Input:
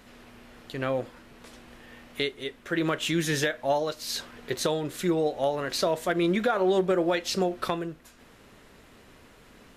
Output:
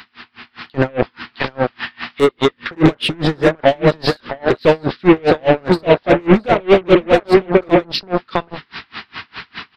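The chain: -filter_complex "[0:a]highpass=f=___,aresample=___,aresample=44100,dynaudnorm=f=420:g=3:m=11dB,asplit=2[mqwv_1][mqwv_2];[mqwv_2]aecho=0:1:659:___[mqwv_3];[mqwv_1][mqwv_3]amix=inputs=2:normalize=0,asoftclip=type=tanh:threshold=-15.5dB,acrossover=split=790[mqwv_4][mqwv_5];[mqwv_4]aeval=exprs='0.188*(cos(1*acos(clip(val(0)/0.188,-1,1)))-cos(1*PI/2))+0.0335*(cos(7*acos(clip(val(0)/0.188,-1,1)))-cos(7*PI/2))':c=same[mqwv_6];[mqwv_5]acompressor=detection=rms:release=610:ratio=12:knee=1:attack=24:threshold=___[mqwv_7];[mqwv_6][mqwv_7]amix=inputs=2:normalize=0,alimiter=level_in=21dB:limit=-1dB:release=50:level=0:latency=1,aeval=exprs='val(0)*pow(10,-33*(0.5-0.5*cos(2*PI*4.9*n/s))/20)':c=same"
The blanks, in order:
82, 11025, 0.447, -35dB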